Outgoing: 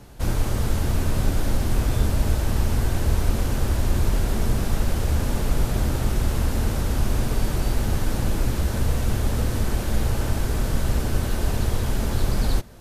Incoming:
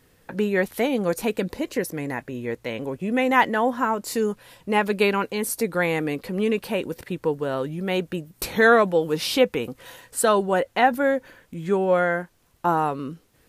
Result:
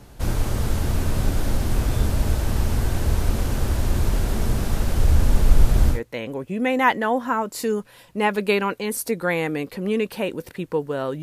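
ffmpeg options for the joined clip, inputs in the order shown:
ffmpeg -i cue0.wav -i cue1.wav -filter_complex "[0:a]asettb=1/sr,asplit=3[link_01][link_02][link_03];[link_01]atrim=end=4.974[link_04];[link_02]atrim=start=4.97:end=6.01,asetpts=PTS-STARTPTS,afade=type=in:duration=0.004:curve=qsin,afade=type=out:start_time=1.036:duration=0.004:curve=qsin,lowshelf=frequency=61:gain=10.5[link_05];[link_03]atrim=start=6.006[link_06];[link_04][link_05]acrossfade=duration=0.004:curve1=hsin:curve2=qsin[link_07];[link_07][link_06]acrossfade=duration=0.004:curve1=qsin:curve2=hsin,apad=whole_dur=11.22,atrim=end=11.22,atrim=end=6.01,asetpts=PTS-STARTPTS[link_08];[1:a]atrim=start=2.41:end=7.74,asetpts=PTS-STARTPTS[link_09];[link_08][link_09]acrossfade=duration=0.12:curve1=tri:curve2=tri" out.wav

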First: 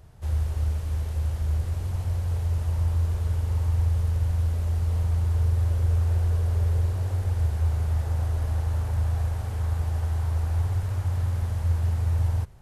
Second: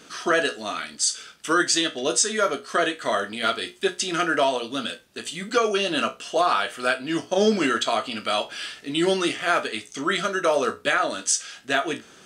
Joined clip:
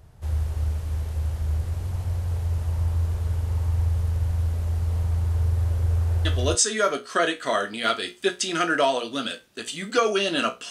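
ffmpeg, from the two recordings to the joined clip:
ffmpeg -i cue0.wav -i cue1.wav -filter_complex "[0:a]apad=whole_dur=10.7,atrim=end=10.7,atrim=end=6.55,asetpts=PTS-STARTPTS[link_01];[1:a]atrim=start=1.84:end=6.29,asetpts=PTS-STARTPTS[link_02];[link_01][link_02]acrossfade=duration=0.3:curve1=log:curve2=log" out.wav

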